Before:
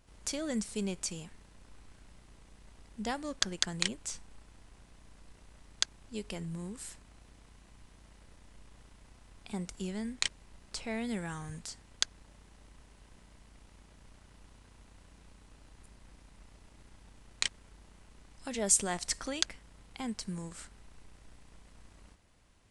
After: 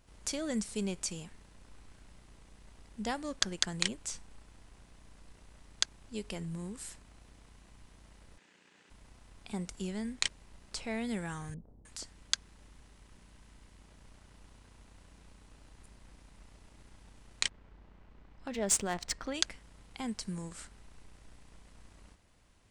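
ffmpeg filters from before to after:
-filter_complex "[0:a]asettb=1/sr,asplit=3[a][b][c];[a]atrim=end=8.384[d];[b]atrim=start=8.38:end=8.9,asetpts=PTS-STARTPTS,afade=t=in:d=0.004:c=qsin,afade=t=out:st=0.516:d=0.004:c=qsin,highpass=f=200:w=0.5412,highpass=f=200:w=1.3066,equalizer=f=240:t=q:w=4:g=-7,equalizer=f=650:t=q:w=4:g=-8,equalizer=f=1.1k:t=q:w=4:g=-5,equalizer=f=1.7k:t=q:w=4:g=6,equalizer=f=2.6k:t=q:w=4:g=5,equalizer=f=5.4k:t=q:w=4:g=-3,lowpass=f=7.8k:w=0.5412,lowpass=f=7.8k:w=1.3066[e];[c]atrim=start=8.896[f];[d][e]acrossfade=d=0.004:c1=hsin:c2=qsin[g];[g][f]acrossfade=d=0.004:c1=qsin:c2=hsin,asettb=1/sr,asplit=3[h][i][j];[h]atrim=end=11.544[k];[i]atrim=start=11.54:end=13.8,asetpts=PTS-STARTPTS,afade=t=in:d=0.004:c=qsin,afade=t=out:st=2.256:d=0.004:c=qsin,acrossover=split=660[l][m];[m]adelay=310[n];[l][n]amix=inputs=2:normalize=0,atrim=end_sample=99666[o];[j]atrim=start=13.796[p];[k][o]acrossfade=d=0.004:c1=hsin:c2=qsin[q];[q][p]acrossfade=d=0.004:c1=qsin:c2=hsin,asplit=3[r][s][t];[r]afade=t=out:st=17.48:d=0.02[u];[s]adynamicsmooth=sensitivity=6.5:basefreq=2.7k,afade=t=in:st=17.48:d=0.02,afade=t=out:st=19.33:d=0.02[v];[t]afade=t=in:st=19.33:d=0.02[w];[u][v][w]amix=inputs=3:normalize=0"

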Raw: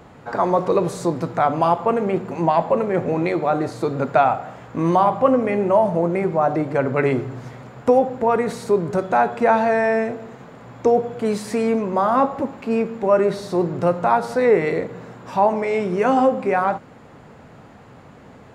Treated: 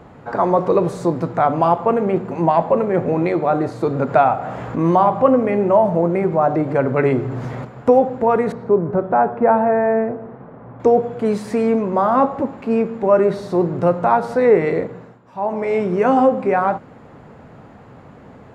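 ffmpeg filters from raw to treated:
-filter_complex "[0:a]asettb=1/sr,asplit=3[a][b][c];[a]atrim=end=3.874[d];[b]atrim=start=3.87:end=7.65,asetpts=PTS-STARTPTS,afade=t=in:d=0.004:c=qsin,afade=t=out:st=3.776:d=0.004:c=qsin,acompressor=mode=upward:threshold=-20dB:ratio=2.5:attack=3.2:release=140:knee=2.83:detection=peak[e];[c]atrim=start=7.646[f];[d][e]acrossfade=d=0.004:c1=hsin:c2=qsin[g];[g][f]acrossfade=d=0.004:c1=qsin:c2=hsin,asettb=1/sr,asplit=3[h][i][j];[h]atrim=end=8.524[k];[i]atrim=start=8.52:end=10.8,asetpts=PTS-STARTPTS,afade=t=in:d=0.004:c=qsin,afade=t=out:st=2.276:d=0.004:c=qsin,lowpass=1.4k[l];[j]atrim=start=10.796[m];[k][l]acrossfade=d=0.004:c1=hsin:c2=qsin[n];[n][m]acrossfade=d=0.004:c1=qsin:c2=hsin,asplit=3[o][p][q];[o]atrim=end=15.21,asetpts=PTS-STARTPTS,afade=t=out:st=14.84:d=0.37:silence=0.188365[r];[p]atrim=start=15.21:end=15.34,asetpts=PTS-STARTPTS,volume=-14.5dB[s];[q]atrim=start=15.34,asetpts=PTS-STARTPTS,afade=t=in:d=0.37:silence=0.188365[t];[r][s][t]concat=n=3:v=0:a=1,highshelf=f=2.5k:g=-9.5,volume=3dB"

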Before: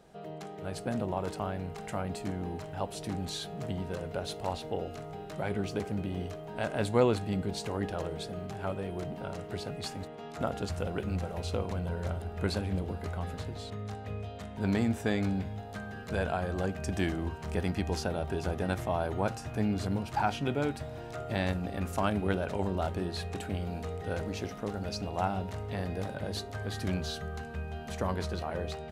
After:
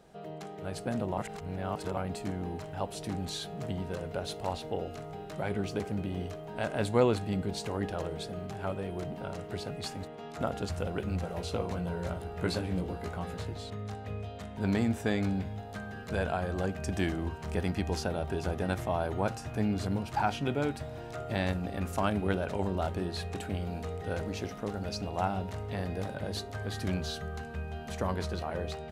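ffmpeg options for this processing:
-filter_complex "[0:a]asettb=1/sr,asplit=3[a][b][c];[a]atrim=end=11.224[d];[b]atrim=start=11.22:end=13.53,asetpts=PTS-STARTPTS,afade=t=in:d=0.004:c=qsin,afade=t=out:st=2.306:d=0.004:c=qsin,asplit=2[e][f];[f]adelay=17,volume=-6dB[g];[e][g]amix=inputs=2:normalize=0,atrim=end_sample=101871[h];[c]atrim=start=13.526[i];[d][h]acrossfade=d=0.004:c1=hsin:c2=qsin[j];[j][i]acrossfade=d=0.004:c1=qsin:c2=hsin,asplit=3[k][l][m];[k]atrim=end=1.182[n];[l]atrim=start=1.178:end=1.972,asetpts=PTS-STARTPTS,areverse[o];[m]atrim=start=1.968[p];[n][o]acrossfade=d=0.004:c1=hsin:c2=hsin[q];[q][p]acrossfade=d=0.004:c1=hsin:c2=hsin"

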